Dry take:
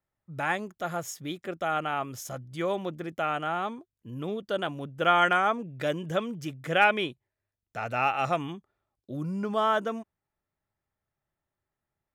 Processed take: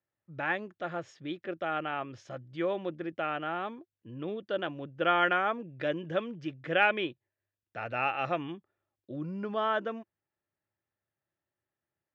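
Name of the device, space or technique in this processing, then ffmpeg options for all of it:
guitar cabinet: -af "highpass=92,equalizer=frequency=100:width_type=q:width=4:gain=5,equalizer=frequency=330:width_type=q:width=4:gain=7,equalizer=frequency=540:width_type=q:width=4:gain=5,equalizer=frequency=1700:width_type=q:width=4:gain=6,equalizer=frequency=2700:width_type=q:width=4:gain=4,lowpass=frequency=4500:width=0.5412,lowpass=frequency=4500:width=1.3066,volume=-6dB"

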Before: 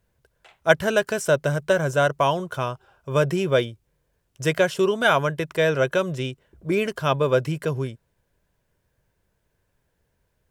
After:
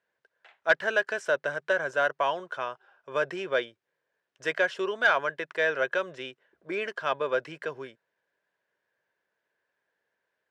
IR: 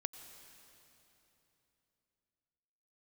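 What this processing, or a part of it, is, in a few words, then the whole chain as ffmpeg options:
intercom: -af "highpass=440,lowpass=4400,equalizer=frequency=1700:width_type=o:width=0.43:gain=8,asoftclip=type=tanh:threshold=-5dB,volume=-5.5dB"

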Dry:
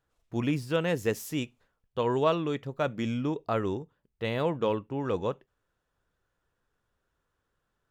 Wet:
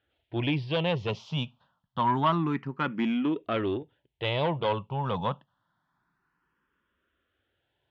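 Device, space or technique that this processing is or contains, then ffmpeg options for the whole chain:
barber-pole phaser into a guitar amplifier: -filter_complex "[0:a]asplit=2[link_01][link_02];[link_02]afreqshift=0.27[link_03];[link_01][link_03]amix=inputs=2:normalize=1,asoftclip=type=tanh:threshold=-25.5dB,highpass=88,equalizer=frequency=160:width_type=q:width=4:gain=3,equalizer=frequency=460:width_type=q:width=4:gain=-7,equalizer=frequency=950:width_type=q:width=4:gain=5,equalizer=frequency=3200:width_type=q:width=4:gain=7,lowpass=frequency=4000:width=0.5412,lowpass=frequency=4000:width=1.3066,volume=6.5dB"

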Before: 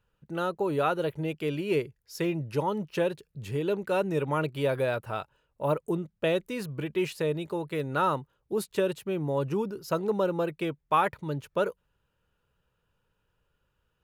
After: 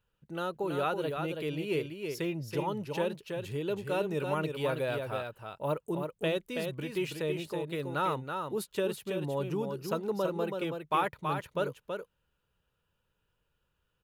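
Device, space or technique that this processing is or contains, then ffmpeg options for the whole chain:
presence and air boost: -af "equalizer=frequency=3300:width_type=o:width=0.77:gain=3.5,highshelf=frequency=9800:gain=4.5,aecho=1:1:327:0.531,volume=-5dB"

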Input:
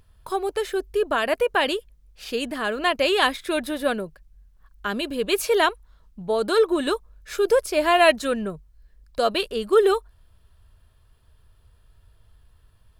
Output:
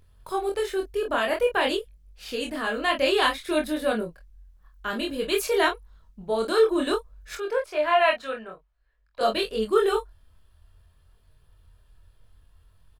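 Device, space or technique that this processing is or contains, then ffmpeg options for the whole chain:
double-tracked vocal: -filter_complex "[0:a]asettb=1/sr,asplit=3[link_01][link_02][link_03];[link_01]atrim=end=7.354[link_04];[link_02]atrim=start=7.35:end=9.21,asetpts=PTS-STARTPTS,afade=type=in:duration=0.004:curve=qsin,afade=type=out:start_time=1.856:duration=0.004:curve=qsin,acrossover=split=530 3300:gain=0.141 1 0.141[link_05][link_06][link_07];[link_05][link_06][link_07]amix=inputs=3:normalize=0[link_08];[link_03]atrim=start=9.206[link_09];[link_04][link_08]acrossfade=duration=0.004:curve1=hsin:curve2=qsin[link_10];[link_10][link_09]acrossfade=duration=0.004:curve1=qsin:curve2=hsin,asplit=2[link_11][link_12];[link_12]adelay=23,volume=-6dB[link_13];[link_11][link_13]amix=inputs=2:normalize=0,flanger=delay=22.5:depth=4.4:speed=0.53"

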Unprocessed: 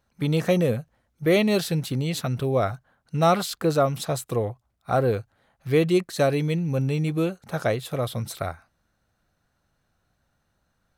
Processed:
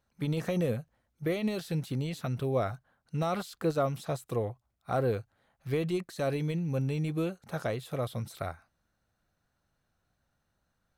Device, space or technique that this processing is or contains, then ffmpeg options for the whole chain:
de-esser from a sidechain: -filter_complex "[0:a]asplit=2[link_01][link_02];[link_02]highpass=4000,apad=whole_len=484214[link_03];[link_01][link_03]sidechaincompress=threshold=-42dB:ratio=3:attack=2.2:release=31,volume=-6dB"

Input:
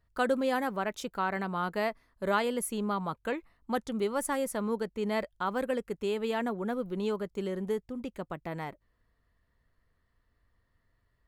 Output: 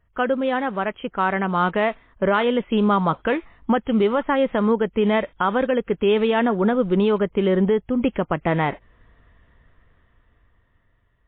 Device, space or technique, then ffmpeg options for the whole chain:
low-bitrate web radio: -af "dynaudnorm=framelen=460:gausssize=9:maxgain=13dB,alimiter=limit=-16.5dB:level=0:latency=1:release=465,volume=7.5dB" -ar 8000 -c:a libmp3lame -b:a 24k

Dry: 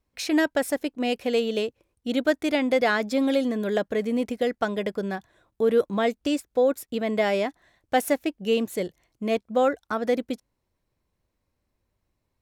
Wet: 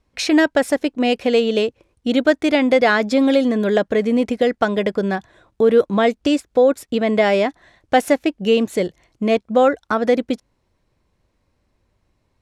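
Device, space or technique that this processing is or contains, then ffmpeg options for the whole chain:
parallel compression: -filter_complex "[0:a]lowpass=11000,highshelf=frequency=9700:gain=-10,asplit=2[link_01][link_02];[link_02]acompressor=threshold=-30dB:ratio=6,volume=-2dB[link_03];[link_01][link_03]amix=inputs=2:normalize=0,volume=5.5dB"

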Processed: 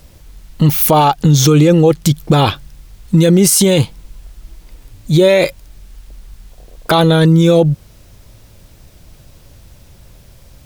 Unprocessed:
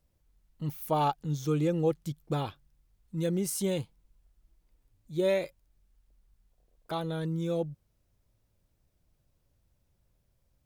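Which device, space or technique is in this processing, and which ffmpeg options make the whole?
mastering chain: -af "equalizer=frequency=4000:width_type=o:width=2.3:gain=4,acompressor=threshold=-35dB:ratio=1.5,asoftclip=type=hard:threshold=-21.5dB,alimiter=level_in=31dB:limit=-1dB:release=50:level=0:latency=1,volume=-1dB"

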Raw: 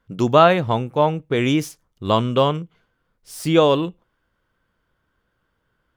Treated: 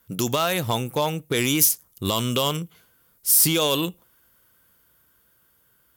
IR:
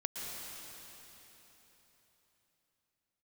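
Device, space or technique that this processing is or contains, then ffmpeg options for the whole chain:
FM broadcast chain: -filter_complex "[0:a]highpass=51,dynaudnorm=framelen=200:gausssize=13:maxgain=11.5dB,acrossover=split=1600|5500[link_01][link_02][link_03];[link_01]acompressor=threshold=-21dB:ratio=4[link_04];[link_02]acompressor=threshold=-27dB:ratio=4[link_05];[link_03]acompressor=threshold=-41dB:ratio=4[link_06];[link_04][link_05][link_06]amix=inputs=3:normalize=0,aemphasis=mode=production:type=50fm,alimiter=limit=-13dB:level=0:latency=1:release=58,asoftclip=type=hard:threshold=-16dB,lowpass=frequency=15000:width=0.5412,lowpass=frequency=15000:width=1.3066,aemphasis=mode=production:type=50fm,volume=1.5dB"

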